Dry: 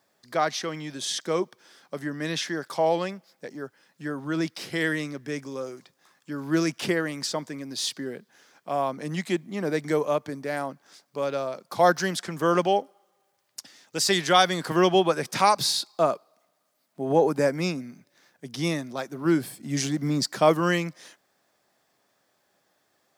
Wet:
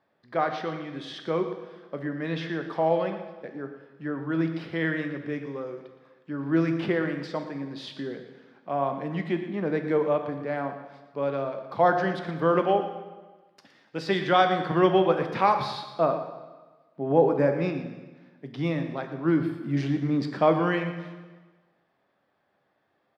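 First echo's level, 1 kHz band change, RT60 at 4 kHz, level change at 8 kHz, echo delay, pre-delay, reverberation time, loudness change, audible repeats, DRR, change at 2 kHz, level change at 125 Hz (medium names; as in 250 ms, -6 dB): -13.0 dB, -0.5 dB, 1.2 s, under -20 dB, 116 ms, 5 ms, 1.3 s, -1.0 dB, 1, 5.5 dB, -2.5 dB, +1.5 dB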